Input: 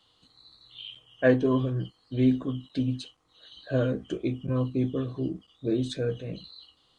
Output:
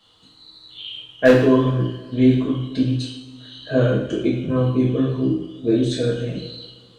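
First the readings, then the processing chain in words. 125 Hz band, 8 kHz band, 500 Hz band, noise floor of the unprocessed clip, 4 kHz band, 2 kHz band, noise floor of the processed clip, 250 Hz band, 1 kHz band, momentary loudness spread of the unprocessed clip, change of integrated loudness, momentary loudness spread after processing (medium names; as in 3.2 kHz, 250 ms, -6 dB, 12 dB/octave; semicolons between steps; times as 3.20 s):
+8.5 dB, no reading, +9.0 dB, -67 dBFS, +10.0 dB, +9.0 dB, -51 dBFS, +8.5 dB, +10.0 dB, 18 LU, +9.0 dB, 17 LU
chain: wavefolder -13 dBFS; two-slope reverb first 0.71 s, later 2.2 s, from -17 dB, DRR -4 dB; trim +4 dB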